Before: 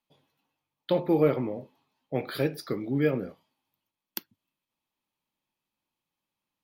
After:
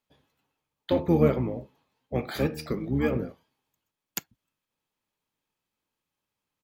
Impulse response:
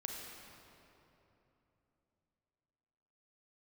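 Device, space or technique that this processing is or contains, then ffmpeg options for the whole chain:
octave pedal: -filter_complex "[0:a]asettb=1/sr,asplit=3[a][b][c];[a]atrim=end=2.444[d];[b]atrim=start=2.44:end=3.23,asetpts=PTS-STARTPTS,afade=t=in:d=0.004:c=qsin,afade=t=out:st=0.786:d=0.004:c=qsin,bandreject=f=77.07:t=h:w=4,bandreject=f=154.14:t=h:w=4,bandreject=f=231.21:t=h:w=4,bandreject=f=308.28:t=h:w=4,bandreject=f=385.35:t=h:w=4,bandreject=f=462.42:t=h:w=4,bandreject=f=539.49:t=h:w=4,bandreject=f=616.56:t=h:w=4,bandreject=f=693.63:t=h:w=4,bandreject=f=770.7:t=h:w=4,bandreject=f=847.77:t=h:w=4,bandreject=f=924.84:t=h:w=4,bandreject=f=1.00191k:t=h:w=4,bandreject=f=1.07898k:t=h:w=4,bandreject=f=1.15605k:t=h:w=4,bandreject=f=1.23312k:t=h:w=4,bandreject=f=1.31019k:t=h:w=4,bandreject=f=1.38726k:t=h:w=4,bandreject=f=1.46433k:t=h:w=4,bandreject=f=1.5414k:t=h:w=4,bandreject=f=1.61847k:t=h:w=4,bandreject=f=1.69554k:t=h:w=4,bandreject=f=1.77261k:t=h:w=4,bandreject=f=1.84968k:t=h:w=4,bandreject=f=1.92675k:t=h:w=4[e];[c]atrim=start=3.226[f];[d][e]acrossfade=d=0.004:c1=hsin:c2=qsin[g];[g][f]acrossfade=d=0.004:c1=qsin:c2=hsin,asplit=2[h][i];[i]asetrate=22050,aresample=44100,atempo=2,volume=-4dB[j];[h][j]amix=inputs=2:normalize=0"

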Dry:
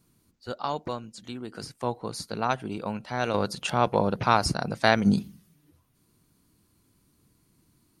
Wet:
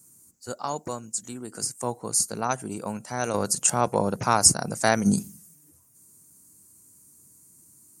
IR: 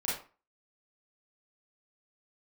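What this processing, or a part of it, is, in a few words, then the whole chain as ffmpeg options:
budget condenser microphone: -af "highpass=79,highshelf=f=5.2k:t=q:w=3:g=14"

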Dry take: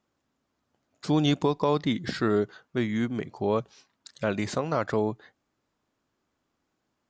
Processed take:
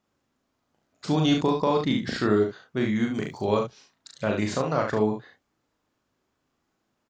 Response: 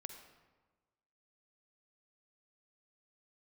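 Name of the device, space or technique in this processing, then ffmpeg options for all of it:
slapback doubling: -filter_complex "[0:a]asplit=3[a][b][c];[a]afade=t=out:st=3.13:d=0.02[d];[b]aemphasis=mode=production:type=75kf,afade=t=in:st=3.13:d=0.02,afade=t=out:st=3.58:d=0.02[e];[c]afade=t=in:st=3.58:d=0.02[f];[d][e][f]amix=inputs=3:normalize=0,asplit=3[g][h][i];[h]adelay=38,volume=-3.5dB[j];[i]adelay=70,volume=-6.5dB[k];[g][j][k]amix=inputs=3:normalize=0"

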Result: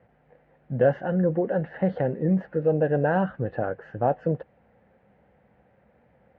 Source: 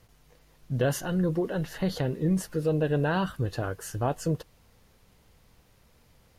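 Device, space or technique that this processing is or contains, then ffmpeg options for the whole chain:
bass cabinet: -af "highpass=f=67:w=0.5412,highpass=f=67:w=1.3066,equalizer=f=91:t=q:w=4:g=-9,equalizer=f=210:t=q:w=4:g=6,equalizer=f=540:t=q:w=4:g=9,equalizer=f=770:t=q:w=4:g=8,equalizer=f=1.1k:t=q:w=4:g=-7,equalizer=f=1.7k:t=q:w=4:g=4,lowpass=f=2.1k:w=0.5412,lowpass=f=2.1k:w=1.3066"

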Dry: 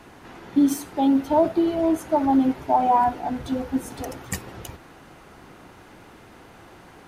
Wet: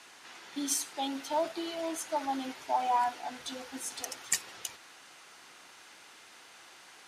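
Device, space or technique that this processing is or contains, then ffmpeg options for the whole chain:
piezo pickup straight into a mixer: -af "lowpass=6.7k,aderivative,volume=9dB"

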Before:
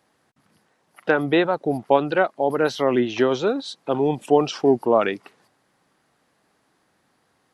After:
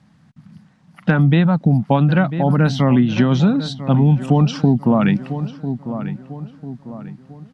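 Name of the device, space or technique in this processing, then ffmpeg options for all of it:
jukebox: -filter_complex "[0:a]lowpass=7k,lowshelf=f=270:t=q:w=3:g=13.5,asplit=2[a][b];[b]adelay=996,lowpass=f=2k:p=1,volume=-14.5dB,asplit=2[c][d];[d]adelay=996,lowpass=f=2k:p=1,volume=0.43,asplit=2[e][f];[f]adelay=996,lowpass=f=2k:p=1,volume=0.43,asplit=2[g][h];[h]adelay=996,lowpass=f=2k:p=1,volume=0.43[i];[a][c][e][g][i]amix=inputs=5:normalize=0,acompressor=threshold=-15dB:ratio=5,volume=4.5dB"

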